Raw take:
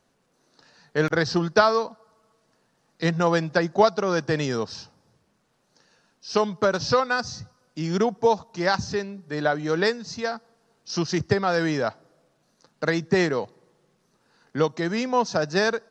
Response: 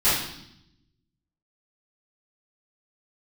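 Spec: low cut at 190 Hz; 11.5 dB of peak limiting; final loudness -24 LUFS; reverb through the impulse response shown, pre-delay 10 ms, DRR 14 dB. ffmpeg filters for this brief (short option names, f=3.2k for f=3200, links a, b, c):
-filter_complex "[0:a]highpass=190,alimiter=limit=-16dB:level=0:latency=1,asplit=2[a][b];[1:a]atrim=start_sample=2205,adelay=10[c];[b][c]afir=irnorm=-1:irlink=0,volume=-30.5dB[d];[a][d]amix=inputs=2:normalize=0,volume=4dB"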